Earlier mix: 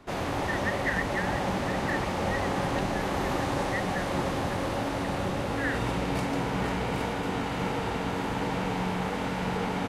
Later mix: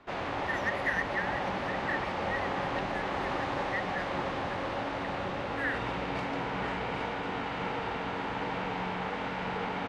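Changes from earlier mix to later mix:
background: add LPF 3300 Hz 12 dB/oct; master: add low shelf 430 Hz -9.5 dB

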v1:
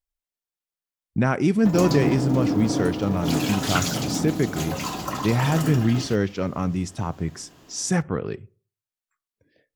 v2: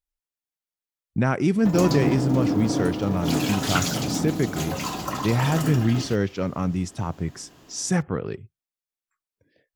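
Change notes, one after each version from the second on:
speech: send off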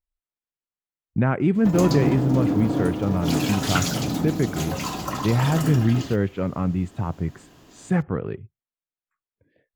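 speech: add running mean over 8 samples; master: add low shelf 150 Hz +3.5 dB

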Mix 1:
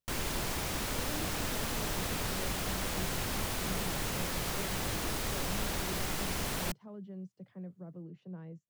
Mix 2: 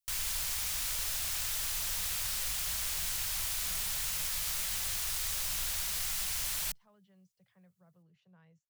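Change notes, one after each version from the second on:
background: add high shelf 4200 Hz +7 dB; master: add passive tone stack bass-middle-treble 10-0-10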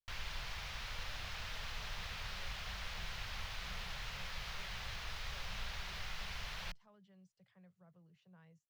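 background: add air absorption 270 m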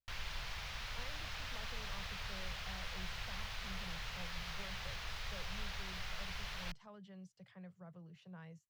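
speech +10.0 dB

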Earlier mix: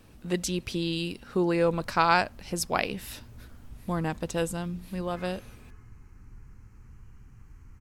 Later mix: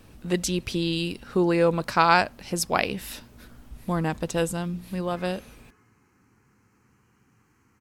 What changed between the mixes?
speech +3.5 dB; background: add HPF 230 Hz 12 dB/oct

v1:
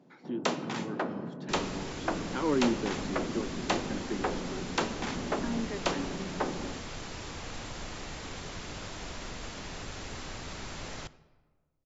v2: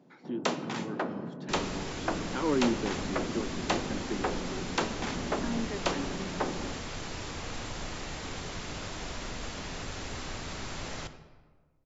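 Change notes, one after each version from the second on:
second sound: send +9.0 dB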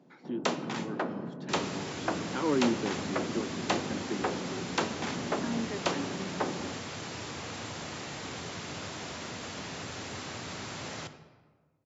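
master: add HPF 94 Hz 24 dB/oct

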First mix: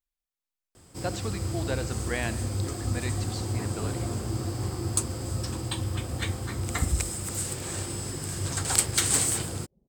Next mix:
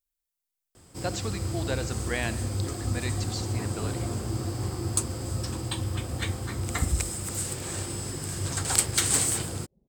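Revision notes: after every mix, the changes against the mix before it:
speech: add high shelf 5800 Hz +11 dB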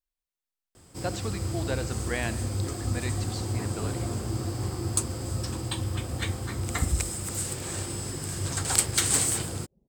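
speech: add high shelf 5800 Hz -11 dB

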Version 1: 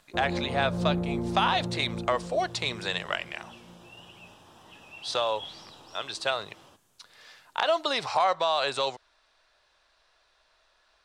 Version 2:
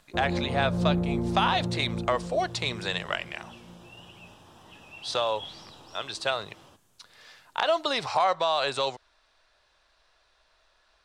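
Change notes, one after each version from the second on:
master: add low shelf 200 Hz +5 dB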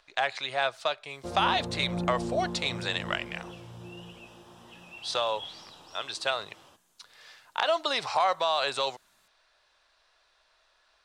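first sound: entry +1.10 s; master: add low shelf 340 Hz -9 dB

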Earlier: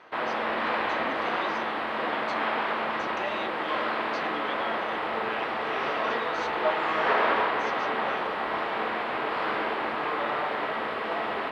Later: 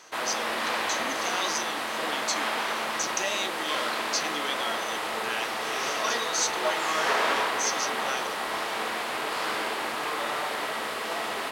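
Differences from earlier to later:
background -4.0 dB; master: remove air absorption 430 m

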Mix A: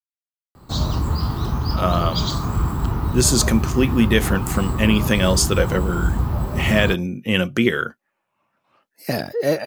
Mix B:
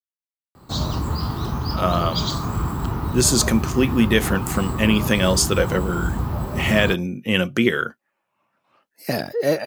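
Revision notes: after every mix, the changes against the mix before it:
master: add low shelf 60 Hz -10 dB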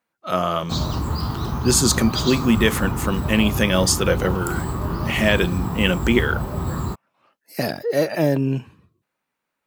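speech: entry -1.50 s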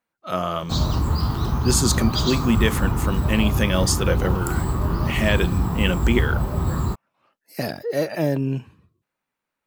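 speech -3.5 dB; master: add low shelf 60 Hz +10 dB

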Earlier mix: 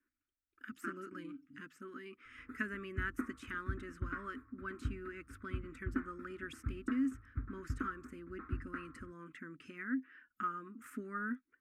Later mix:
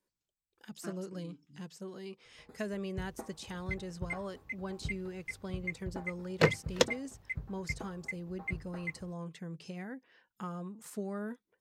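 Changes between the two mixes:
first sound -3.0 dB; second sound: unmuted; master: remove EQ curve 100 Hz 0 dB, 180 Hz -16 dB, 260 Hz +12 dB, 430 Hz -11 dB, 790 Hz -28 dB, 1300 Hz +12 dB, 2600 Hz 0 dB, 4200 Hz -18 dB, 6600 Hz -13 dB, 12000 Hz -7 dB

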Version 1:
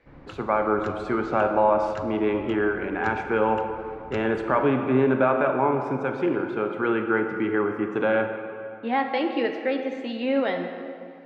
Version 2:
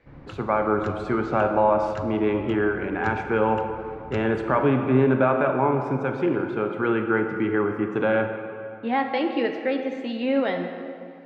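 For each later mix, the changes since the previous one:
master: add bell 110 Hz +6 dB 1.6 oct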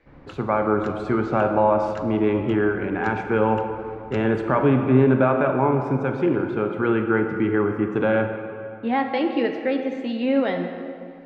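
speech: remove HPF 360 Hz 6 dB/oct; master: add bell 110 Hz -6 dB 1.6 oct

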